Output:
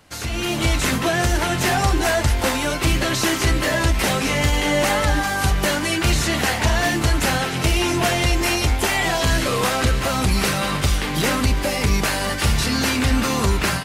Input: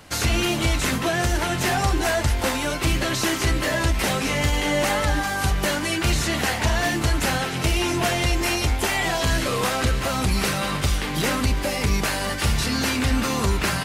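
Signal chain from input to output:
automatic gain control gain up to 11.5 dB
level −6.5 dB

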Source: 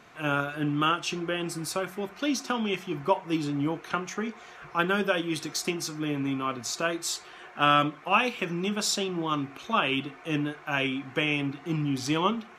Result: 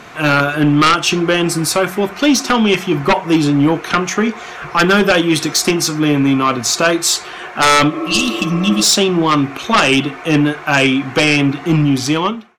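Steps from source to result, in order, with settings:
fade-out on the ending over 0.82 s
sine wavefolder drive 12 dB, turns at −7.5 dBFS
healed spectral selection 0:07.95–0:08.81, 320–2,600 Hz before
level +1.5 dB

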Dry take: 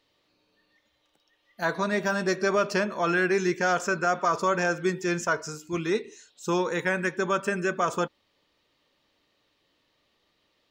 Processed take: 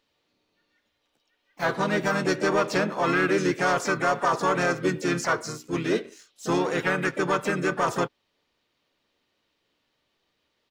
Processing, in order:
pitch-shifted copies added −4 semitones −5 dB, +4 semitones −12 dB, +7 semitones −14 dB
leveller curve on the samples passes 1
level −3 dB

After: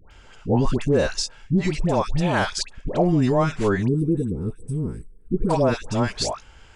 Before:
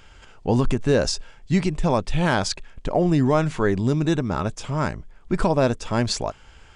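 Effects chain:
all-pass dispersion highs, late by 110 ms, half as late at 1,000 Hz
gain on a spectral selection 0:03.88–0:05.50, 510–7,800 Hz −25 dB

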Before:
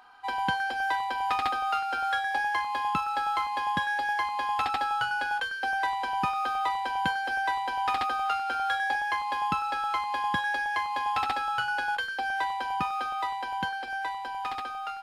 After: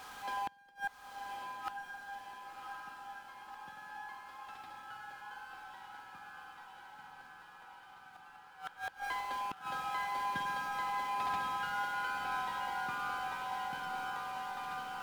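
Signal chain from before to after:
converter with a step at zero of −32.5 dBFS
source passing by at 0:04.77, 9 m/s, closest 8 metres
spring reverb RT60 2.3 s, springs 46 ms, chirp 80 ms, DRR 3 dB
gate with flip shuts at −30 dBFS, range −28 dB
on a send: feedback delay with all-pass diffusion 1,071 ms, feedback 66%, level −3 dB
on the sum: level +2.5 dB

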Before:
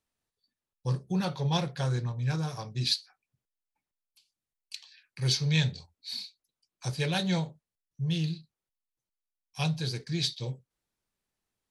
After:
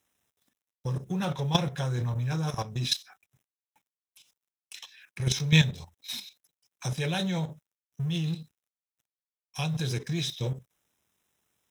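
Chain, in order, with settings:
mu-law and A-law mismatch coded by mu
high-pass filter 63 Hz 12 dB per octave
output level in coarse steps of 12 dB
Butterworth band-reject 4,500 Hz, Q 4.5
level +7.5 dB

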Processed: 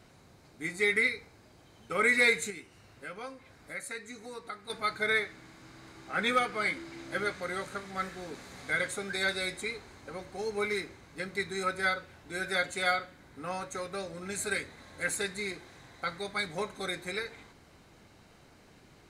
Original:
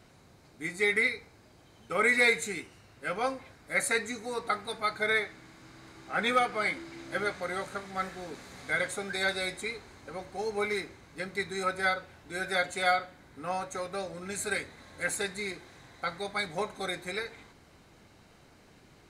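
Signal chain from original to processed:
dynamic equaliser 740 Hz, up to −6 dB, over −46 dBFS, Q 2.1
0:02.50–0:04.70: downward compressor 2 to 1, threshold −46 dBFS, peak gain reduction 12.5 dB

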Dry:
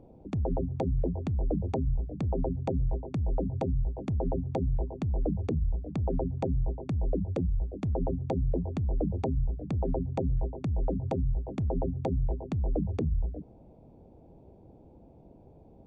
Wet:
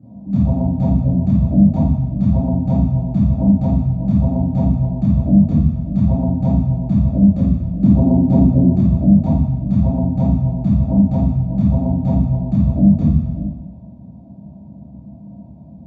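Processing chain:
0:07.82–0:08.70: parametric band 330 Hz +12 dB 1.1 octaves
convolution reverb RT60 1.1 s, pre-delay 3 ms, DRR −15 dB
level −15.5 dB

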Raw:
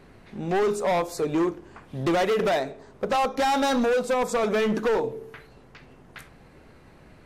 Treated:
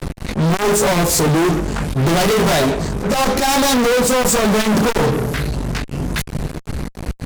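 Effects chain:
bass and treble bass +14 dB, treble +11 dB
volume swells 137 ms
multi-voice chorus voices 6, 0.73 Hz, delay 16 ms, depth 4 ms
fuzz pedal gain 40 dB, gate −43 dBFS

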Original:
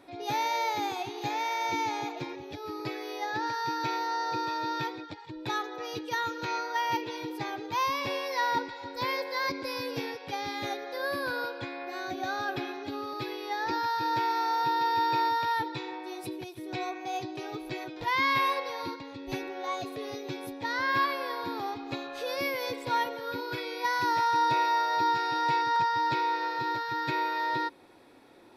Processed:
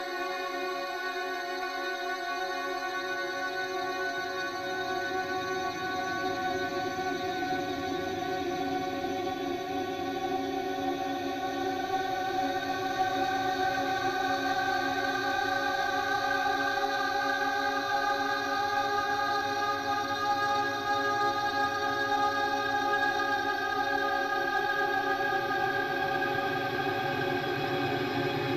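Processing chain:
extreme stretch with random phases 46×, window 0.25 s, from 0:11.95
harmonic generator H 6 −28 dB, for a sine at −18.5 dBFS
level +3 dB

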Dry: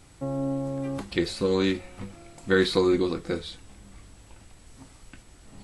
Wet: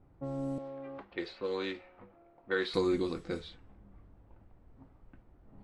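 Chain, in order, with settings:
0:00.58–0:02.74: three-way crossover with the lows and the highs turned down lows −15 dB, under 360 Hz, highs −17 dB, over 4,600 Hz
low-pass that shuts in the quiet parts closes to 770 Hz, open at −23.5 dBFS
level −7.5 dB

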